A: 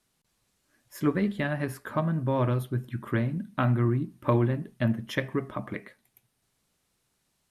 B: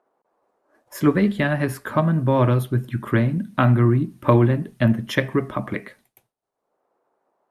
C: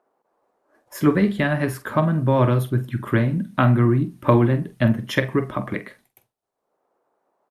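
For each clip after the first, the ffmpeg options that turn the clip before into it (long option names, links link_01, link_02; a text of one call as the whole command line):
ffmpeg -i in.wav -filter_complex "[0:a]agate=range=-33dB:threshold=-57dB:ratio=3:detection=peak,acrossover=split=410|1000[link_01][link_02][link_03];[link_02]acompressor=mode=upward:threshold=-49dB:ratio=2.5[link_04];[link_01][link_04][link_03]amix=inputs=3:normalize=0,volume=8dB" out.wav
ffmpeg -i in.wav -filter_complex "[0:a]asplit=2[link_01][link_02];[link_02]adelay=46,volume=-13dB[link_03];[link_01][link_03]amix=inputs=2:normalize=0" out.wav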